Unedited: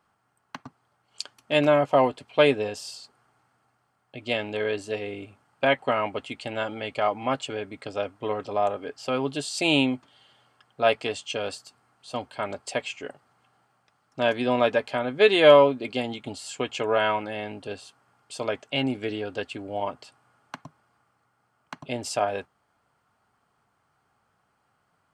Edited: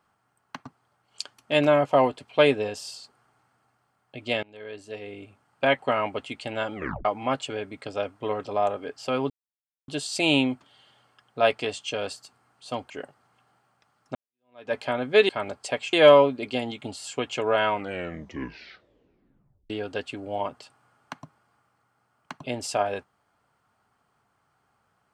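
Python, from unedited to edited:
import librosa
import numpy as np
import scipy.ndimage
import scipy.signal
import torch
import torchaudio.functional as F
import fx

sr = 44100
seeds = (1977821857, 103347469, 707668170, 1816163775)

y = fx.edit(x, sr, fx.fade_in_from(start_s=4.43, length_s=1.27, floor_db=-24.0),
    fx.tape_stop(start_s=6.75, length_s=0.3),
    fx.insert_silence(at_s=9.3, length_s=0.58),
    fx.move(start_s=12.32, length_s=0.64, to_s=15.35),
    fx.fade_in_span(start_s=14.21, length_s=0.59, curve='exp'),
    fx.tape_stop(start_s=17.12, length_s=2.0), tone=tone)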